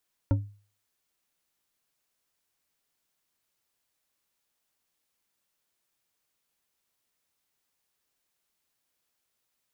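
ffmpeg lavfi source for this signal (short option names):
-f lavfi -i "aevalsrc='0.133*pow(10,-3*t/0.4)*sin(2*PI*102*t)+0.0668*pow(10,-3*t/0.197)*sin(2*PI*281.2*t)+0.0335*pow(10,-3*t/0.123)*sin(2*PI*551.2*t)+0.0168*pow(10,-3*t/0.086)*sin(2*PI*911.2*t)+0.00841*pow(10,-3*t/0.065)*sin(2*PI*1360.7*t)':d=0.89:s=44100"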